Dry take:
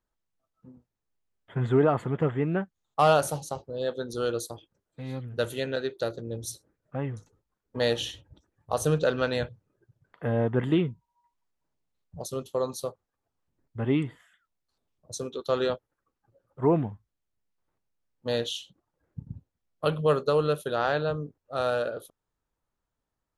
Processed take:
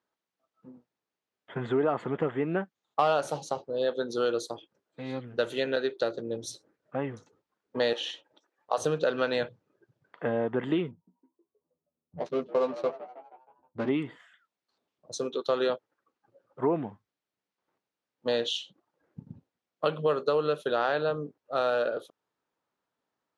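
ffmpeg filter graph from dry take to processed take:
ffmpeg -i in.wav -filter_complex "[0:a]asettb=1/sr,asplit=3[link_01][link_02][link_03];[link_01]atrim=end=7.934[link_04];[link_02]atrim=start=7.93:end=8.78,asetpts=PTS-STARTPTS,afade=type=in:duration=0.004:curve=qsin,afade=type=out:start_time=0.846:duration=0.004:curve=qsin,acrossover=split=2900[link_05][link_06];[link_06]acompressor=threshold=-38dB:ratio=4:attack=1:release=60[link_07];[link_05][link_07]amix=inputs=2:normalize=0,highpass=500[link_08];[link_03]atrim=start=8.776[link_09];[link_04][link_08]acrossfade=duration=0.004:curve1=hsin:curve2=qsin[link_10];[link_10][link_09]acrossfade=duration=0.004:curve1=qsin:curve2=hsin,asettb=1/sr,asplit=3[link_11][link_12][link_13];[link_11]atrim=end=10.914[link_14];[link_12]atrim=start=10.91:end=13.89,asetpts=PTS-STARTPTS,afade=type=in:duration=0.004:curve=qsin,afade=type=out:start_time=2.976:duration=0.004:curve=qsin,asplit=7[link_15][link_16][link_17][link_18][link_19][link_20][link_21];[link_16]adelay=158,afreqshift=78,volume=-17dB[link_22];[link_17]adelay=316,afreqshift=156,volume=-21.3dB[link_23];[link_18]adelay=474,afreqshift=234,volume=-25.6dB[link_24];[link_19]adelay=632,afreqshift=312,volume=-29.9dB[link_25];[link_20]adelay=790,afreqshift=390,volume=-34.2dB[link_26];[link_21]adelay=948,afreqshift=468,volume=-38.5dB[link_27];[link_15][link_22][link_23][link_24][link_25][link_26][link_27]amix=inputs=7:normalize=0,atrim=end_sample=131418,adynamicsmooth=sensitivity=8:basefreq=550,asplit=2[link_28][link_29];[link_29]adelay=12,volume=-3.5dB[link_30];[link_28][link_30]amix=inputs=2:normalize=0,atrim=end_sample=131418[link_31];[link_13]atrim=start=13.886[link_32];[link_14][link_31]acrossfade=duration=0.004:curve1=hsin:curve2=qsin[link_33];[link_33][link_32]acrossfade=duration=0.004:curve1=qsin:curve2=hsin,lowpass=5000,acompressor=threshold=-27dB:ratio=3,highpass=240,volume=4dB" out.wav

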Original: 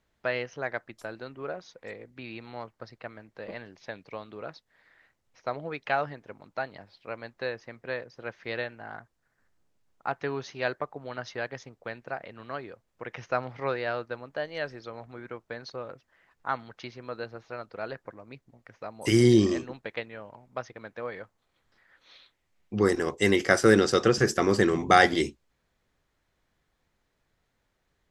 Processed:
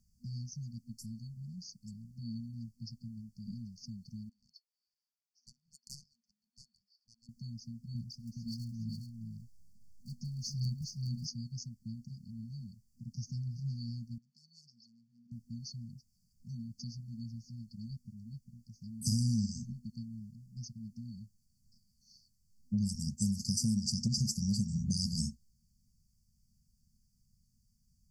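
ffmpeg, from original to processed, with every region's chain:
ffmpeg -i in.wav -filter_complex "[0:a]asettb=1/sr,asplit=3[link_01][link_02][link_03];[link_01]atrim=end=4.294[link_04];[link_02]atrim=start=4.29:end=7.29,asetpts=PTS-STARTPTS,afade=type=in:duration=0.004:curve=qsin,afade=type=out:start_time=2.996:duration=0.004:curve=qsin,highpass=frequency=590:width=0.5412,highpass=frequency=590:width=1.3066,adynamicsmooth=sensitivity=3.5:basefreq=2600[link_05];[link_03]atrim=start=7.286[link_06];[link_04][link_05]acrossfade=duration=0.004:curve1=hsin:curve2=qsin[link_07];[link_07][link_06]acrossfade=duration=0.004:curve1=qsin:curve2=hsin,asettb=1/sr,asplit=3[link_08][link_09][link_10];[link_08]atrim=end=7.954[link_11];[link_09]atrim=start=7.95:end=11.27,asetpts=PTS-STARTPTS,afade=type=in:duration=0.004:curve=qsin,afade=type=out:start_time=3.316:duration=0.004:curve=qsin,aphaser=in_gain=1:out_gain=1:delay=4.1:decay=0.57:speed=1.1:type=sinusoidal,aecho=1:1:416:0.596,atrim=end_sample=146412[link_12];[link_10]atrim=start=11.266[link_13];[link_11][link_12]acrossfade=duration=0.004:curve1=hsin:curve2=qsin[link_14];[link_14][link_13]acrossfade=duration=0.004:curve1=qsin:curve2=hsin,asettb=1/sr,asplit=3[link_15][link_16][link_17];[link_15]atrim=end=14.184[link_18];[link_16]atrim=start=14.18:end=15.32,asetpts=PTS-STARTPTS,afade=type=in:duration=0.004:curve=qsin,afade=type=out:start_time=1.136:duration=0.004:curve=qsin,asoftclip=type=hard:threshold=-31dB,highpass=610,lowpass=2900[link_19];[link_17]atrim=start=15.316[link_20];[link_18][link_19]acrossfade=duration=0.004:curve1=hsin:curve2=qsin[link_21];[link_21][link_20]acrossfade=duration=0.004:curve1=qsin:curve2=hsin,afftfilt=real='re*(1-between(b*sr/4096,240,4400))':imag='im*(1-between(b*sr/4096,240,4400))':win_size=4096:overlap=0.75,acompressor=threshold=-35dB:ratio=5,volume=6dB" out.wav

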